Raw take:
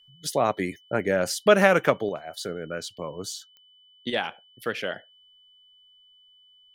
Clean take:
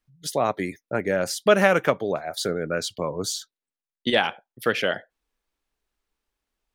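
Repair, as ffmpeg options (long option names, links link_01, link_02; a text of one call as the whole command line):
ffmpeg -i in.wav -af "adeclick=threshold=4,bandreject=frequency=3000:width=30,asetnsamples=nb_out_samples=441:pad=0,asendcmd='2.09 volume volume 6.5dB',volume=0dB" out.wav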